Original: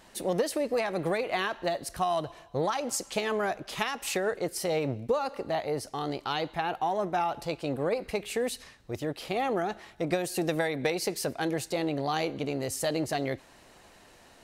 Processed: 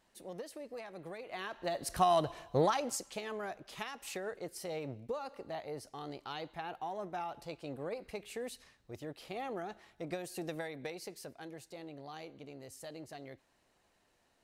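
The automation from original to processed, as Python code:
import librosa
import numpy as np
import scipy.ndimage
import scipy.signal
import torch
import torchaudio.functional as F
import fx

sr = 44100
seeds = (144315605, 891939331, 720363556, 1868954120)

y = fx.gain(x, sr, db=fx.line((1.16, -17.0), (1.7, -6.5), (1.95, 0.5), (2.62, 0.5), (3.18, -11.5), (10.48, -11.5), (11.49, -18.0)))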